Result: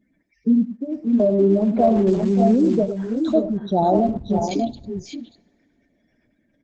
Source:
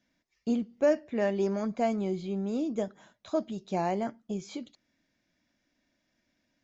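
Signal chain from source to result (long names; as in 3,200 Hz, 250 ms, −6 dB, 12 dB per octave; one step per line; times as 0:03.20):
0:03.82–0:04.39: wind on the microphone 210 Hz −36 dBFS
gate on every frequency bin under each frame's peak −10 dB strong
in parallel at +3 dB: brickwall limiter −26 dBFS, peak gain reduction 9.5 dB
0:00.73–0:01.20: on the sum: formant resonators in series i
0:02.07–0:02.75: centre clipping without the shift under −40 dBFS
multi-tap delay 87/102/579/601 ms −18.5/−12/−10.5/−7 dB
on a send at −19 dB: convolution reverb, pre-delay 3 ms
on the sum: level +6 dB
Opus 12 kbit/s 48,000 Hz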